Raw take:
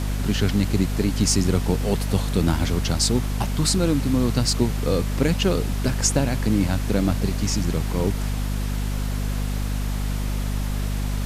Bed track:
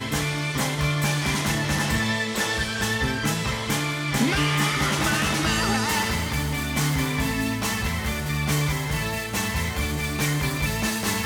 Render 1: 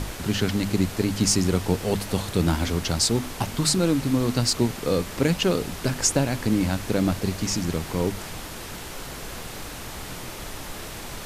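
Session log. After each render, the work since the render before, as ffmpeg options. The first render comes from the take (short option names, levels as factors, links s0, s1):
-af "bandreject=f=50:t=h:w=6,bandreject=f=100:t=h:w=6,bandreject=f=150:t=h:w=6,bandreject=f=200:t=h:w=6,bandreject=f=250:t=h:w=6"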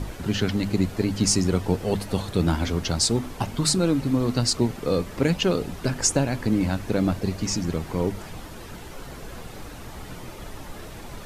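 -af "afftdn=nr=9:nf=-37"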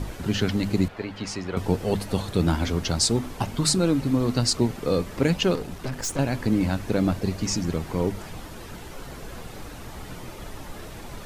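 -filter_complex "[0:a]asettb=1/sr,asplit=3[s0][s1][s2];[s0]atrim=end=0.884[s3];[s1]atrim=start=0.88:end=1.57,asetpts=PTS-STARTPTS,afade=t=in:d=0.004:c=qsin,afade=t=out:st=0.686:d=0.004:c=qsin,acrossover=split=500 3600:gain=0.251 1 0.112[s4][s5][s6];[s4][s5][s6]amix=inputs=3:normalize=0[s7];[s2]atrim=start=1.566[s8];[s3][s7]acrossfade=d=0.004:c1=hsin:c2=qsin[s9];[s9][s8]acrossfade=d=0.004:c1=qsin:c2=hsin,asettb=1/sr,asplit=3[s10][s11][s12];[s10]atrim=end=5.554[s13];[s11]atrim=start=5.55:end=6.19,asetpts=PTS-STARTPTS,afade=t=in:d=0.004:c=qsin,afade=t=out:st=0.636:d=0.004:c=qsin,aeval=exprs='(tanh(20*val(0)+0.45)-tanh(0.45))/20':c=same[s14];[s12]atrim=start=6.186[s15];[s13][s14]acrossfade=d=0.004:c1=hsin:c2=qsin[s16];[s16][s15]acrossfade=d=0.004:c1=qsin:c2=hsin"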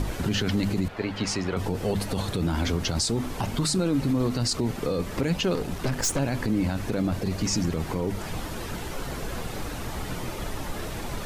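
-filter_complex "[0:a]asplit=2[s0][s1];[s1]acompressor=threshold=0.0282:ratio=6,volume=0.944[s2];[s0][s2]amix=inputs=2:normalize=0,alimiter=limit=0.15:level=0:latency=1:release=31"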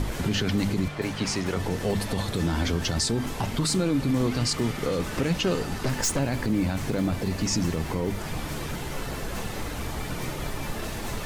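-filter_complex "[1:a]volume=0.178[s0];[0:a][s0]amix=inputs=2:normalize=0"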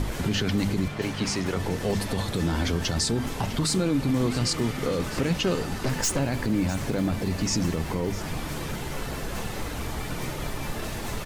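-af "aecho=1:1:654:0.168"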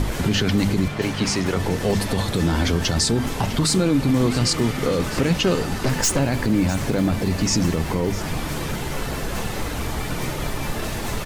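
-af "volume=1.88"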